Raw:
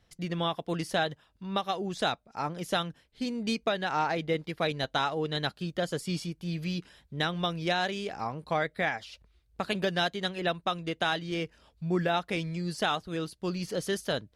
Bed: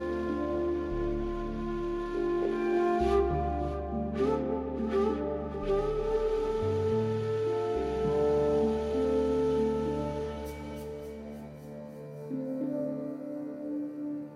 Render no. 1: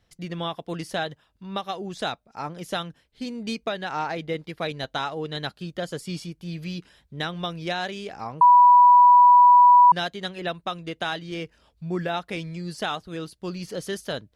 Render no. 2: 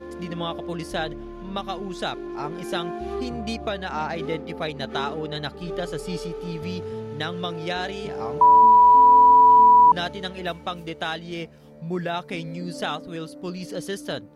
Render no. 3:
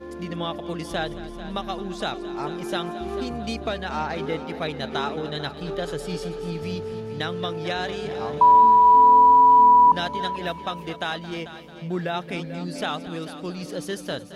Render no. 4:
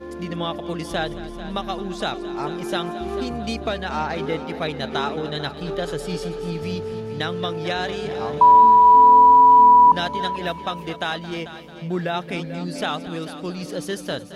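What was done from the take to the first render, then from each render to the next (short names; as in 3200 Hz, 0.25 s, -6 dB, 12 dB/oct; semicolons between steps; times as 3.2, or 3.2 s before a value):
8.41–9.92 bleep 980 Hz -9.5 dBFS
add bed -4.5 dB
multi-head echo 0.221 s, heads first and second, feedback 46%, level -15.5 dB
gain +2.5 dB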